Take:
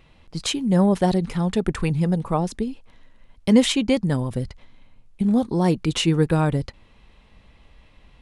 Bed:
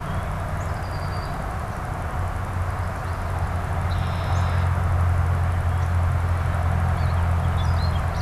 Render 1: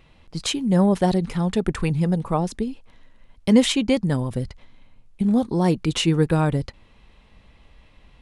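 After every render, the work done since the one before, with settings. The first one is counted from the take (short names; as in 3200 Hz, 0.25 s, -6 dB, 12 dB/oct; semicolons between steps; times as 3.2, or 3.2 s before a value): nothing audible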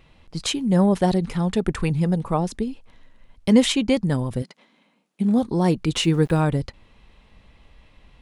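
4.42–5.39 brick-wall FIR high-pass 160 Hz; 5.96–6.43 sample gate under -42.5 dBFS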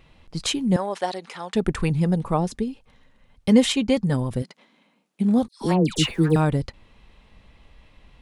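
0.76–1.55 BPF 650–8000 Hz; 2.46–4.14 notch comb 330 Hz; 5.48–6.36 dispersion lows, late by 0.134 s, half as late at 1400 Hz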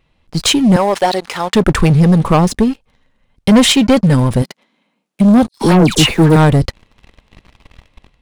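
AGC gain up to 4.5 dB; sample leveller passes 3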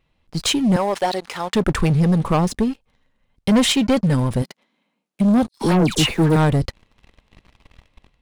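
gain -7 dB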